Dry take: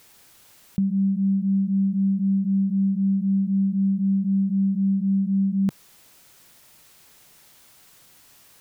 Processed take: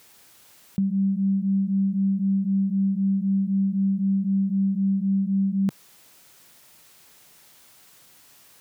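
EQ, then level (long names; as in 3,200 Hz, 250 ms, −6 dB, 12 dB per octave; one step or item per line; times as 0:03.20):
low-shelf EQ 75 Hz −8.5 dB
0.0 dB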